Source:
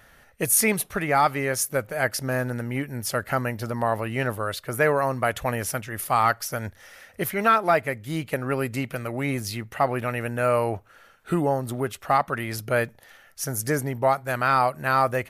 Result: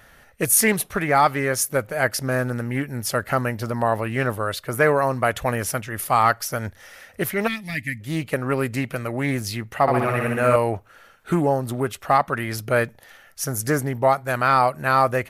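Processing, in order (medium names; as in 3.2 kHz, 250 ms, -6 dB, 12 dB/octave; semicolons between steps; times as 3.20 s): 7.47–8.00 s: time-frequency box 310–1700 Hz -26 dB; 9.81–10.56 s: flutter echo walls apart 11 m, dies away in 1 s; loudspeaker Doppler distortion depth 0.16 ms; trim +3 dB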